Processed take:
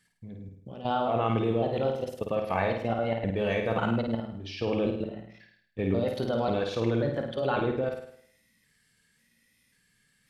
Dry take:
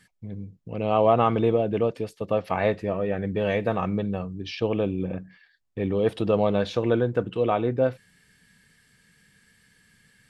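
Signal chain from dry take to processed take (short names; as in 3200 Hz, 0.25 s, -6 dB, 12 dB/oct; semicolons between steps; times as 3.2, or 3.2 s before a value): trilling pitch shifter +2.5 st, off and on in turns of 0.54 s; high shelf 2800 Hz +4.5 dB; level quantiser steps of 14 dB; flutter echo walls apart 9 m, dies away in 0.64 s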